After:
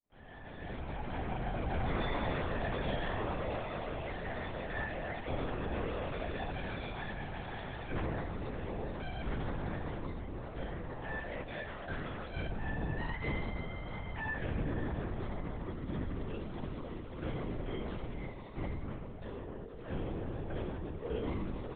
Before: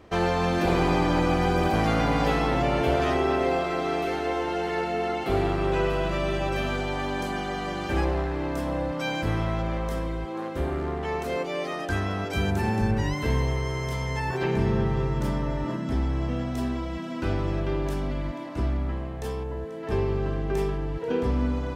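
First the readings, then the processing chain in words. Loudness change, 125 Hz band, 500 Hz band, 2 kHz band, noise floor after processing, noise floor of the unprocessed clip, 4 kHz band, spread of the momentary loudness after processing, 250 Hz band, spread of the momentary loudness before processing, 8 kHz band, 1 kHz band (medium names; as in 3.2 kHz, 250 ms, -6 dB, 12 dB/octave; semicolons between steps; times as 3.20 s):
-12.5 dB, -12.0 dB, -13.5 dB, -9.5 dB, -46 dBFS, -33 dBFS, -12.5 dB, 7 LU, -13.0 dB, 7 LU, under -35 dB, -13.5 dB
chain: fade-in on the opening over 1.92 s; feedback comb 160 Hz, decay 0.69 s, harmonics all, mix 90%; LPC vocoder at 8 kHz whisper; trim +5 dB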